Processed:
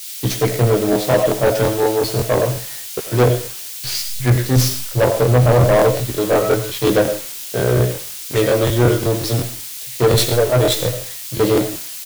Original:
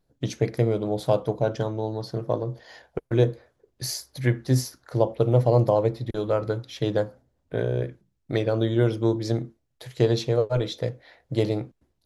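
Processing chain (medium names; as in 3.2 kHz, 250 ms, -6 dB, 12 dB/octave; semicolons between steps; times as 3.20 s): tracing distortion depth 0.14 ms; bass shelf 210 Hz -5 dB; in parallel at -1 dB: gain riding within 4 dB 0.5 s; on the sum: level-controlled noise filter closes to 1.7 kHz, open at -18 dBFS; doubling 16 ms -5 dB; on a send at -7.5 dB: reverberation RT60 0.35 s, pre-delay 60 ms; on the sum: added noise white -34 dBFS; overload inside the chain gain 15 dB; crackling interface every 0.18 s, samples 1024, repeat, from 0.91 s; three bands expanded up and down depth 100%; trim +5 dB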